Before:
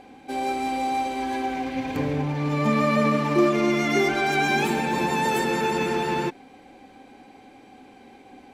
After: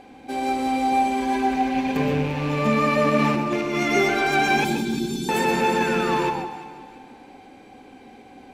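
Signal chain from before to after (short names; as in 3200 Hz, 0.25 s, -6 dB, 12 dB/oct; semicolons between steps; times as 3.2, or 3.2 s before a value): rattling part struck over -31 dBFS, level -27 dBFS; 0.92–2.12 comb 5 ms; 3.19–3.83 negative-ratio compressor -24 dBFS, ratio -0.5; 4.64–5.29 Chebyshev band-stop 380–3200 Hz, order 5; 5.76–6.45 painted sound fall 730–1800 Hz -35 dBFS; echo with dull and thin repeats by turns 0.173 s, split 1100 Hz, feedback 55%, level -10.5 dB; reverb RT60 0.20 s, pre-delay 0.118 s, DRR 6 dB; gain +1 dB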